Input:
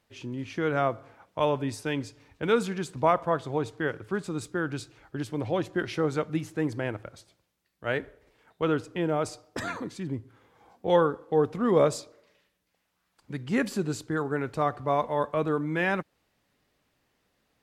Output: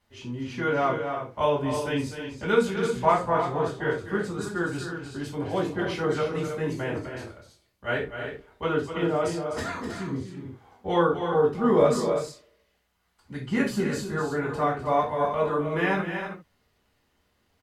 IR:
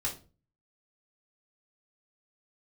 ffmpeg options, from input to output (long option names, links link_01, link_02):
-filter_complex "[0:a]aecho=1:1:252|317:0.335|0.376[link_01];[1:a]atrim=start_sample=2205,atrim=end_sample=3528,asetrate=35280,aresample=44100[link_02];[link_01][link_02]afir=irnorm=-1:irlink=0,volume=-3.5dB"